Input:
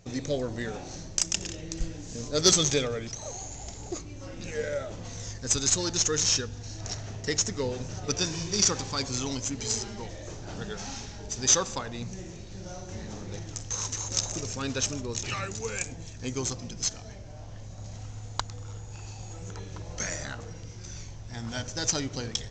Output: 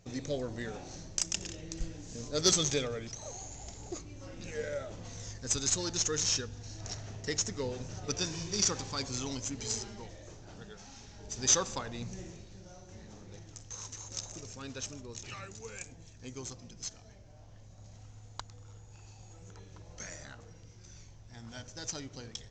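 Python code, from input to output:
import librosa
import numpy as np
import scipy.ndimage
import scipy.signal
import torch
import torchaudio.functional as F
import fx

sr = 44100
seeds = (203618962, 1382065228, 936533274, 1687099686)

y = fx.gain(x, sr, db=fx.line((9.73, -5.5), (10.9, -14.0), (11.44, -4.0), (12.24, -4.0), (12.68, -11.5)))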